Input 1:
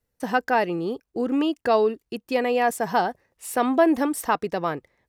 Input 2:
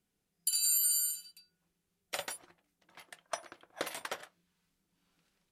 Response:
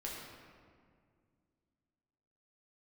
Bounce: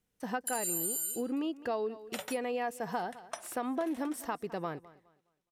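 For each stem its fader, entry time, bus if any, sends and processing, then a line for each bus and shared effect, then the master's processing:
-11.0 dB, 0.00 s, no send, echo send -21.5 dB, none
3.66 s -3 dB -> 4.12 s -14 dB, 0.00 s, no send, no echo send, band-stop 4.6 kHz, Q 8.6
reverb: none
echo: feedback delay 208 ms, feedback 28%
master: harmonic-percussive split harmonic +4 dB; compression 4:1, threshold -31 dBFS, peak gain reduction 9.5 dB

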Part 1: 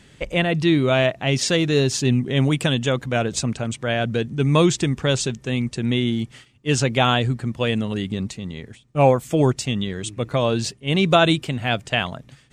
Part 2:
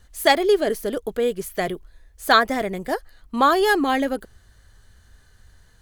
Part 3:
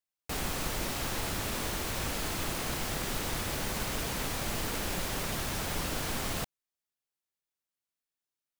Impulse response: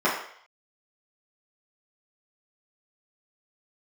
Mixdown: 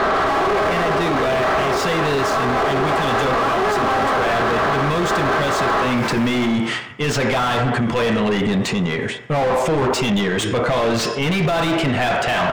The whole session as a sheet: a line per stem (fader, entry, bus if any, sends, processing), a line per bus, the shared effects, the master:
+2.5 dB, 0.35 s, send -22 dB, none
-7.5 dB, 0.00 s, send -13 dB, spectral levelling over time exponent 0.2; low-pass 1.3 kHz 6 dB/octave
0.0 dB, 0.00 s, send -10.5 dB, feedback comb 56 Hz, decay 0.71 s, harmonics all, mix 80%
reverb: on, RT60 0.60 s, pre-delay 3 ms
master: overdrive pedal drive 33 dB, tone 1.4 kHz, clips at -1 dBFS; peak limiter -13.5 dBFS, peak gain reduction 11.5 dB

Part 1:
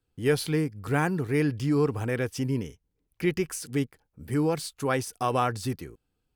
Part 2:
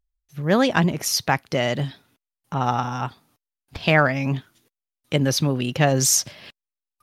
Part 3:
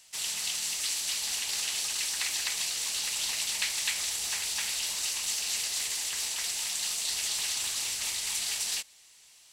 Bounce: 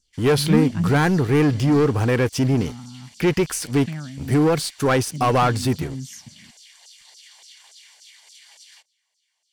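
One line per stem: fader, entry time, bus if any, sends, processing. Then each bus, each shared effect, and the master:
0.0 dB, 0.00 s, no send, waveshaping leveller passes 3
-10.5 dB, 0.00 s, no send, resonant low shelf 330 Hz +12.5 dB, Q 3; auto duck -14 dB, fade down 1.30 s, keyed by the first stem
-13.5 dB, 0.00 s, no send, treble shelf 7.7 kHz -9 dB; LFO high-pass saw down 3.5 Hz 480–6500 Hz; comb of notches 1.3 kHz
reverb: none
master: treble shelf 7.4 kHz -5 dB

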